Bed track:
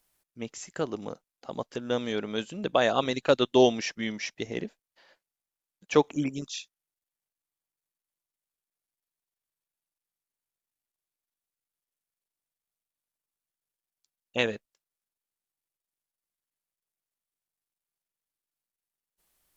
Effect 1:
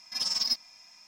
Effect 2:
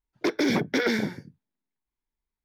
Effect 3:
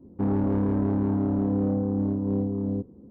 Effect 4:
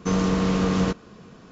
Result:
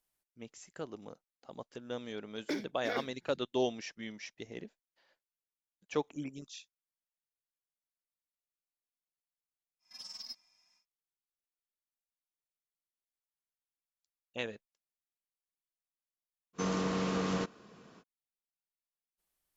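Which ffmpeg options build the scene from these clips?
ffmpeg -i bed.wav -i cue0.wav -i cue1.wav -i cue2.wav -i cue3.wav -filter_complex "[0:a]volume=-11.5dB[link_01];[2:a]aeval=exprs='val(0)*pow(10,-35*(0.5-0.5*cos(2*PI*2.4*n/s))/20)':channel_layout=same[link_02];[4:a]highpass=frequency=270:poles=1[link_03];[link_02]atrim=end=2.44,asetpts=PTS-STARTPTS,volume=-9.5dB,afade=type=in:duration=0.004:curve=hsin,afade=type=out:start_time=2.436:duration=0.004:curve=hsin,adelay=2100[link_04];[1:a]atrim=end=1.07,asetpts=PTS-STARTPTS,volume=-17.5dB,afade=type=in:duration=0.1,afade=type=out:start_time=0.97:duration=0.1,adelay=9790[link_05];[link_03]atrim=end=1.51,asetpts=PTS-STARTPTS,volume=-7.5dB,afade=type=in:duration=0.05,afade=type=out:start_time=1.46:duration=0.05,adelay=16530[link_06];[link_01][link_04][link_05][link_06]amix=inputs=4:normalize=0" out.wav

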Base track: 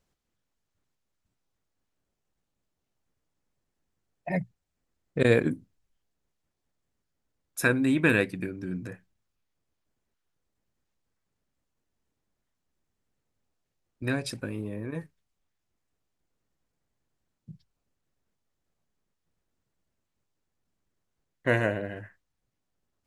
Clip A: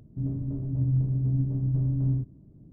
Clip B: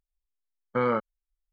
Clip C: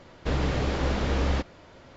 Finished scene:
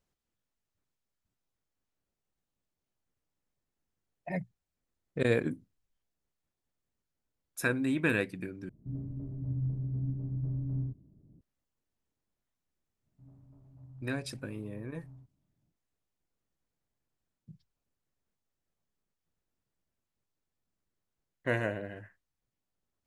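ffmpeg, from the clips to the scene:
ffmpeg -i bed.wav -i cue0.wav -filter_complex "[1:a]asplit=2[link_01][link_02];[0:a]volume=-6dB[link_03];[link_02]lowshelf=frequency=580:width_type=q:width=1.5:gain=-11.5[link_04];[link_03]asplit=2[link_05][link_06];[link_05]atrim=end=8.694[link_07];[link_01]atrim=end=2.72,asetpts=PTS-STARTPTS,volume=-8.5dB[link_08];[link_06]atrim=start=11.406[link_09];[link_04]atrim=end=2.72,asetpts=PTS-STARTPTS,volume=-14.5dB,afade=type=in:duration=0.05,afade=type=out:start_time=2.67:duration=0.05,adelay=13020[link_10];[link_07][link_08]acrossfade=duration=0.004:curve1=hsin:curve2=hsin[link_11];[link_11][link_09]acrossfade=duration=0.004:curve1=hsin:curve2=hsin[link_12];[link_12][link_10]amix=inputs=2:normalize=0" out.wav

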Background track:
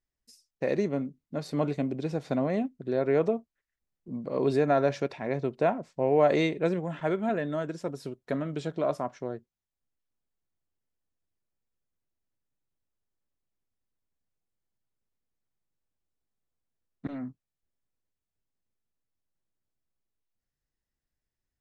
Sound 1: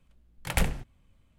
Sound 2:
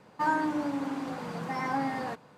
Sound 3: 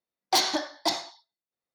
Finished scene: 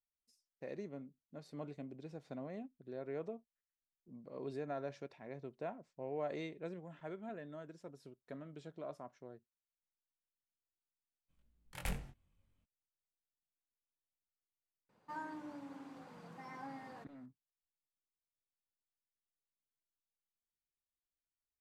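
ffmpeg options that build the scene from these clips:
ffmpeg -i bed.wav -i cue0.wav -i cue1.wav -filter_complex "[0:a]volume=-18dB[link_01];[1:a]asplit=2[link_02][link_03];[link_03]adelay=22,volume=-3.5dB[link_04];[link_02][link_04]amix=inputs=2:normalize=0,atrim=end=1.38,asetpts=PTS-STARTPTS,volume=-15.5dB,afade=type=in:duration=0.02,afade=type=out:start_time=1.36:duration=0.02,adelay=11280[link_05];[2:a]atrim=end=2.37,asetpts=PTS-STARTPTS,volume=-18dB,afade=type=in:duration=0.004:curve=hsin,afade=type=out:start_time=2.366:duration=0.004:curve=hsin,adelay=14890[link_06];[link_01][link_05][link_06]amix=inputs=3:normalize=0" out.wav

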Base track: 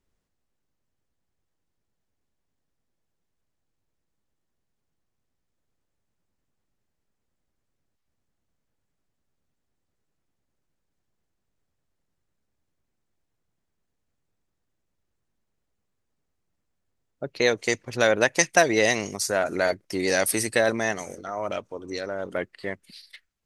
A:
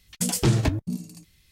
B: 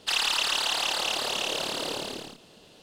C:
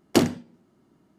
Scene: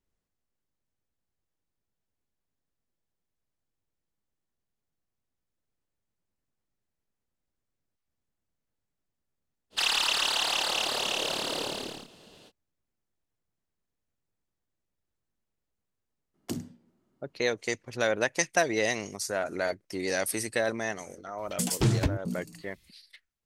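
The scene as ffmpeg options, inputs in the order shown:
ffmpeg -i bed.wav -i cue0.wav -i cue1.wav -i cue2.wav -filter_complex "[0:a]volume=-6.5dB[link_01];[3:a]acrossover=split=270|5100[link_02][link_03][link_04];[link_03]acompressor=threshold=-30dB:ratio=10:attack=5.8:release=519:knee=2.83:detection=peak[link_05];[link_02][link_05][link_04]amix=inputs=3:normalize=0[link_06];[2:a]atrim=end=2.82,asetpts=PTS-STARTPTS,volume=-0.5dB,afade=type=in:duration=0.05,afade=type=out:start_time=2.77:duration=0.05,adelay=427770S[link_07];[link_06]atrim=end=1.18,asetpts=PTS-STARTPTS,volume=-10.5dB,afade=type=in:duration=0.004:curve=hsin,afade=type=out:start_time=1.176:duration=0.004:curve=hsin,adelay=16340[link_08];[1:a]atrim=end=1.51,asetpts=PTS-STARTPTS,volume=-4dB,afade=type=in:duration=0.004:curve=hsin,afade=type=out:start_time=1.506:duration=0.004:curve=hsin,adelay=21380[link_09];[link_01][link_07][link_08][link_09]amix=inputs=4:normalize=0" out.wav

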